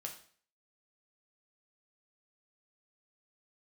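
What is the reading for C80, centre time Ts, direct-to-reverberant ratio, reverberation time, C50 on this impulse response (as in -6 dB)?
13.0 dB, 18 ms, 1.0 dB, 0.50 s, 9.0 dB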